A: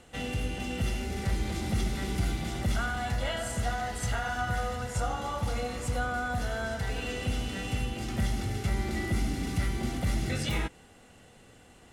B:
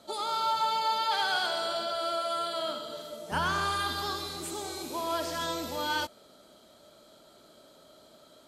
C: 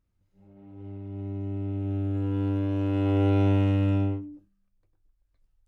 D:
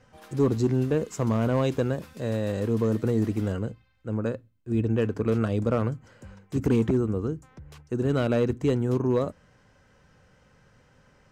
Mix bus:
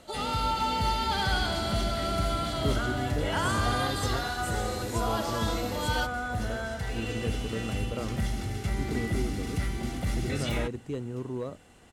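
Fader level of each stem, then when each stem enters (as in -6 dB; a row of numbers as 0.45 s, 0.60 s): -1.0 dB, -1.0 dB, -14.5 dB, -10.5 dB; 0.00 s, 0.00 s, 0.00 s, 2.25 s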